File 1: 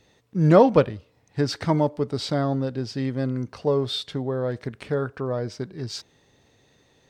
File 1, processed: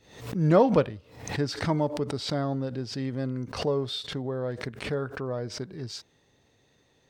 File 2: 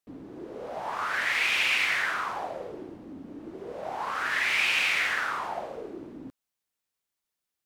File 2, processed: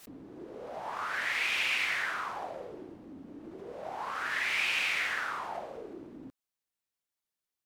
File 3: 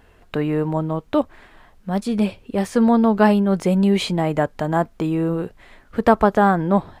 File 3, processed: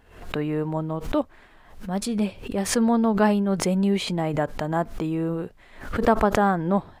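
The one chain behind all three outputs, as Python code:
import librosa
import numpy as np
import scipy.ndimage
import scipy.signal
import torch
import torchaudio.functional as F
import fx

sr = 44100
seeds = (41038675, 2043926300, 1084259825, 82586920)

y = fx.pre_swell(x, sr, db_per_s=98.0)
y = F.gain(torch.from_numpy(y), -5.0).numpy()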